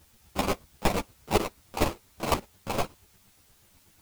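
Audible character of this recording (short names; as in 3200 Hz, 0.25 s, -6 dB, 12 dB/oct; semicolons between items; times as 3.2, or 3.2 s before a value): aliases and images of a low sample rate 1700 Hz, jitter 20%; chopped level 8.3 Hz, depth 65%, duty 30%; a quantiser's noise floor 12-bit, dither triangular; a shimmering, thickened sound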